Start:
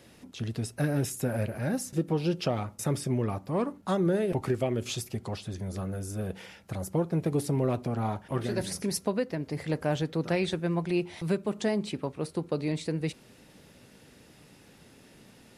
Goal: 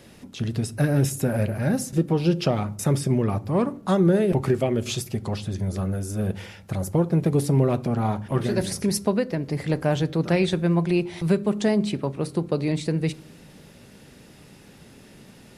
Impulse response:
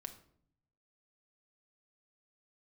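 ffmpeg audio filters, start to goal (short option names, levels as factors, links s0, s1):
-filter_complex "[0:a]asplit=2[s0][s1];[1:a]atrim=start_sample=2205,lowshelf=f=330:g=11[s2];[s1][s2]afir=irnorm=-1:irlink=0,volume=0.447[s3];[s0][s3]amix=inputs=2:normalize=0,volume=1.41"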